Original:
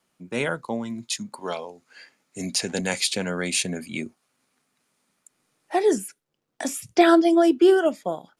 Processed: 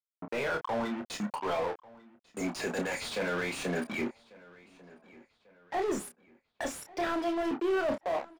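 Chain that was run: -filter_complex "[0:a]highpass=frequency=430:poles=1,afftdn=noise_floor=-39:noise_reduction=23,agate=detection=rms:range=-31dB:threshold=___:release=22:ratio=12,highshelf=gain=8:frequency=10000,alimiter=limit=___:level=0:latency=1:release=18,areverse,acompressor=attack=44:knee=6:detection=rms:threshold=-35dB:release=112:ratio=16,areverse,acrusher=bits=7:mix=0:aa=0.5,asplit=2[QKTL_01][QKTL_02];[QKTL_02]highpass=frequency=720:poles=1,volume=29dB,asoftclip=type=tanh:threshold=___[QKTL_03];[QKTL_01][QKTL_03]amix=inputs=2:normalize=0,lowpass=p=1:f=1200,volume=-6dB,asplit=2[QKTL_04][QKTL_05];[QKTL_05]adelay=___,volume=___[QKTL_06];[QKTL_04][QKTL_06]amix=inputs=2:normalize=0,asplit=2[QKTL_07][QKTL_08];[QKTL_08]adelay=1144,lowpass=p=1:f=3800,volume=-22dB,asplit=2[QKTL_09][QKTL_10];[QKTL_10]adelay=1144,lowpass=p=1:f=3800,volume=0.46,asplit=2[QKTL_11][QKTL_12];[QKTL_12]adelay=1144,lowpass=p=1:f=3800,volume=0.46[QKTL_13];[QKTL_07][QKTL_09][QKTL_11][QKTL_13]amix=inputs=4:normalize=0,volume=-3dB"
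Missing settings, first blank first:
-48dB, -12.5dB, -19dB, 29, -7dB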